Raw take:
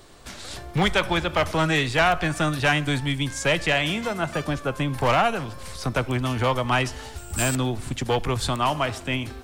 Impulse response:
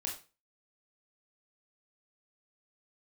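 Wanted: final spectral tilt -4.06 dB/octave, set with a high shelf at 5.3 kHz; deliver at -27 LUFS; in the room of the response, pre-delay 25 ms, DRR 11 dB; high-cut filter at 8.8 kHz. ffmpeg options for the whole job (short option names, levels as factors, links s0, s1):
-filter_complex "[0:a]lowpass=8800,highshelf=f=5300:g=-7.5,asplit=2[s0][s1];[1:a]atrim=start_sample=2205,adelay=25[s2];[s1][s2]afir=irnorm=-1:irlink=0,volume=0.266[s3];[s0][s3]amix=inputs=2:normalize=0,volume=0.708"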